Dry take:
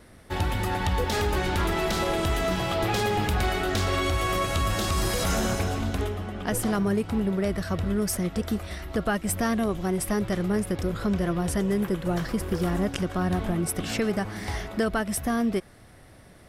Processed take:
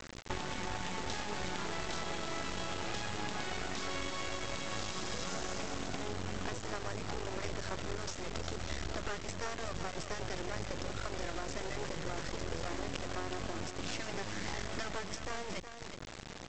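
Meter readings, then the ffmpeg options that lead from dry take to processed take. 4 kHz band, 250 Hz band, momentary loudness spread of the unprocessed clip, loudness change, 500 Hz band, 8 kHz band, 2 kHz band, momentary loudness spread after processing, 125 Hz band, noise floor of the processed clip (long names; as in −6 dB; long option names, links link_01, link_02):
−7.5 dB, −17.5 dB, 4 LU, −13.0 dB, −13.0 dB, −9.5 dB, −9.0 dB, 2 LU, −15.5 dB, −47 dBFS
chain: -af "afftfilt=real='re*lt(hypot(re,im),0.316)':imag='im*lt(hypot(re,im),0.316)':win_size=1024:overlap=0.75,highshelf=frequency=6000:gain=2.5,acompressor=threshold=-37dB:ratio=16,aresample=16000,acrusher=bits=5:dc=4:mix=0:aa=0.000001,aresample=44100,aecho=1:1:368:0.335,volume=5dB"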